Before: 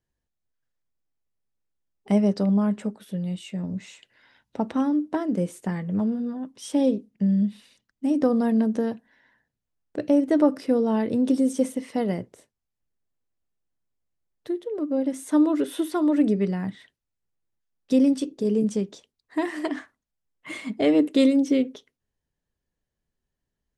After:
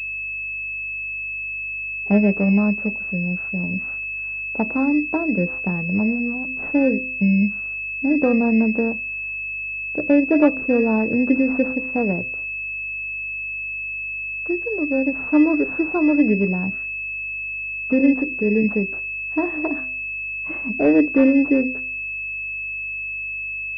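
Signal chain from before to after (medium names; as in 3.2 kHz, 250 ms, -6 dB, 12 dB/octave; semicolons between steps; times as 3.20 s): de-hum 128.7 Hz, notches 5; mains buzz 50 Hz, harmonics 3, -54 dBFS -8 dB/octave; class-D stage that switches slowly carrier 2.6 kHz; trim +4 dB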